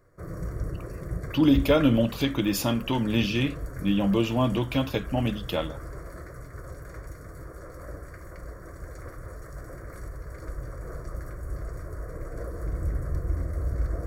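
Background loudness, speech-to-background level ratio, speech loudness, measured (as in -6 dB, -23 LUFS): -37.5 LUFS, 12.0 dB, -25.5 LUFS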